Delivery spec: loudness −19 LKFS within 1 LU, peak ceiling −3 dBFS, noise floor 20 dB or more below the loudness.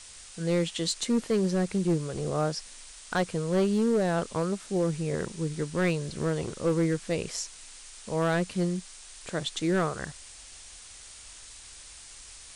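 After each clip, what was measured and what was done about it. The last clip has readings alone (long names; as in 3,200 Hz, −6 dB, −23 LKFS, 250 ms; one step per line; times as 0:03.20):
share of clipped samples 1.4%; peaks flattened at −19.5 dBFS; background noise floor −48 dBFS; target noise floor −49 dBFS; integrated loudness −29.0 LKFS; sample peak −19.5 dBFS; target loudness −19.0 LKFS
→ clipped peaks rebuilt −19.5 dBFS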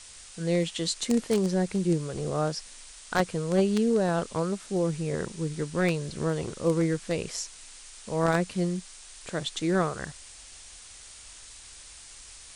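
share of clipped samples 0.0%; background noise floor −48 dBFS; target noise floor −49 dBFS
→ broadband denoise 6 dB, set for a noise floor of −48 dBFS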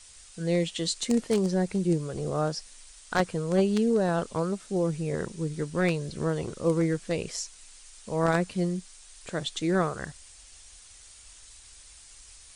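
background noise floor −51 dBFS; integrated loudness −28.5 LKFS; sample peak −10.5 dBFS; target loudness −19.0 LKFS
→ level +9.5 dB
brickwall limiter −3 dBFS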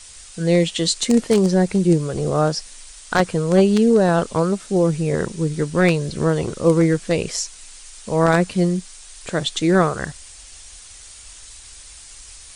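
integrated loudness −19.0 LKFS; sample peak −3.0 dBFS; background noise floor −42 dBFS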